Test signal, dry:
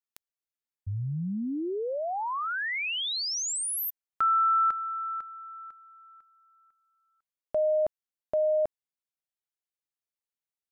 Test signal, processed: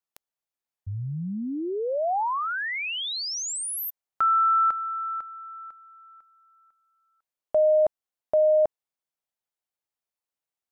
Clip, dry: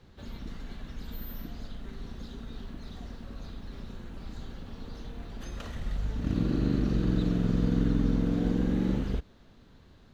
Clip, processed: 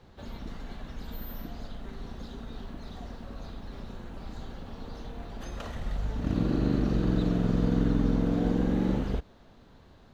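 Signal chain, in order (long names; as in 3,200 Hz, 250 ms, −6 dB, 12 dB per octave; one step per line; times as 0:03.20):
parametric band 750 Hz +6.5 dB 1.4 octaves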